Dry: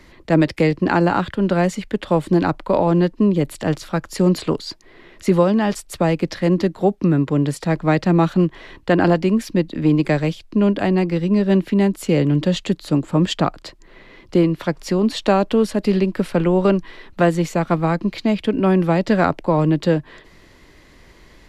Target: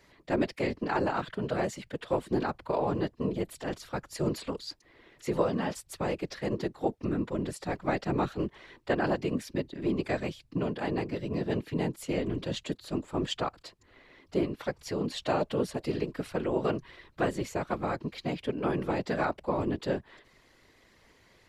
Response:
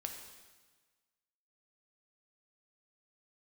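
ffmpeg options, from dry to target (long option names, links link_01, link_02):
-af "bass=frequency=250:gain=-7,treble=frequency=4000:gain=1,afftfilt=real='hypot(re,im)*cos(2*PI*random(0))':imag='hypot(re,im)*sin(2*PI*random(1))':win_size=512:overlap=0.75,volume=-5dB"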